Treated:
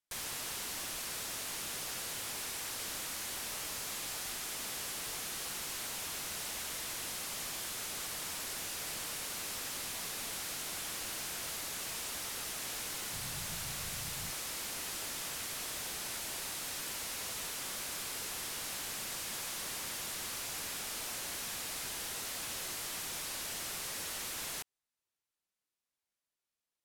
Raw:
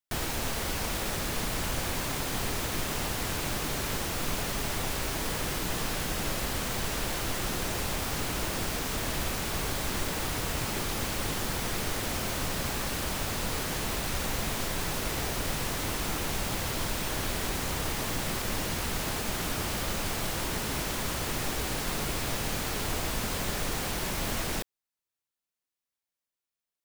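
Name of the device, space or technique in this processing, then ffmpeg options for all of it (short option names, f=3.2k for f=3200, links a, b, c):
overflowing digital effects unit: -filter_complex "[0:a]aeval=exprs='(mod(47.3*val(0)+1,2)-1)/47.3':c=same,lowpass=13k,asettb=1/sr,asplit=3[a][b][c];[a]atrim=end=13.134[d];[b]atrim=start=13.13:end=14.31,asetpts=PTS-STARTPTS,afade=t=in:d=0.004:c=qsin,afade=t=out:st=1.176:d=0.004:c=qsin,lowshelf=f=200:t=q:w=1.5:g=9.5[e];[c]atrim=start=14.306[f];[d][e]acrossfade=d=0.004:c1=hsin:c2=qsin[g];[g][f]acrossfade=d=0.004:c1=qsin:c2=hsin"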